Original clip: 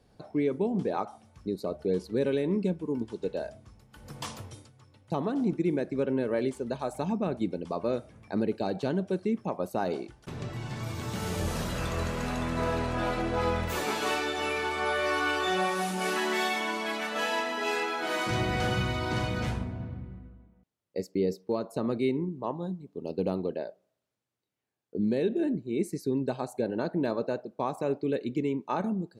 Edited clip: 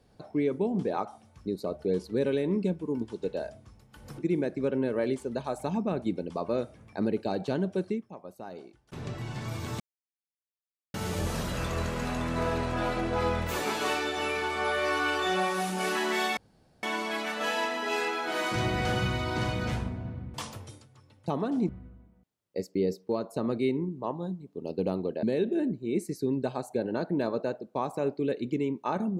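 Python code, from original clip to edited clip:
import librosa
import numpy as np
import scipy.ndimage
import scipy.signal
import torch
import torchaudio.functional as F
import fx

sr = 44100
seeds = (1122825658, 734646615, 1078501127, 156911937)

y = fx.edit(x, sr, fx.move(start_s=4.18, length_s=1.35, to_s=20.09),
    fx.fade_down_up(start_s=9.25, length_s=1.08, db=-12.5, fade_s=0.12),
    fx.insert_silence(at_s=11.15, length_s=1.14),
    fx.insert_room_tone(at_s=16.58, length_s=0.46),
    fx.cut(start_s=23.63, length_s=1.44), tone=tone)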